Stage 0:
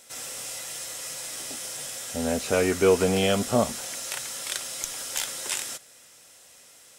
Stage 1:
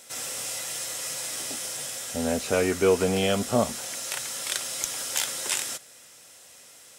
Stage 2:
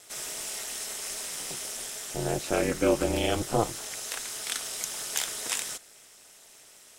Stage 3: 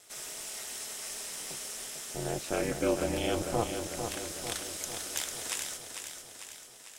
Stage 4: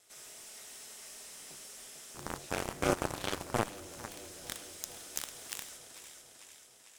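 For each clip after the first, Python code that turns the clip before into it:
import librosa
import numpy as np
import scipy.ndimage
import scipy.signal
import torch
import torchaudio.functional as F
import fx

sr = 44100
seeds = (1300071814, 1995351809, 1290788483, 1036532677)

y1 = fx.rider(x, sr, range_db=3, speed_s=2.0)
y1 = scipy.signal.sosfilt(scipy.signal.butter(2, 49.0, 'highpass', fs=sr, output='sos'), y1)
y2 = y1 * np.sin(2.0 * np.pi * 110.0 * np.arange(len(y1)) / sr)
y3 = fx.echo_feedback(y2, sr, ms=448, feedback_pct=58, wet_db=-7)
y3 = y3 * librosa.db_to_amplitude(-5.0)
y4 = y3 + 10.0 ** (-10.0 / 20.0) * np.pad(y3, (int(79 * sr / 1000.0), 0))[:len(y3)]
y4 = fx.cheby_harmonics(y4, sr, harmonics=(7,), levels_db=(-14,), full_scale_db=-12.5)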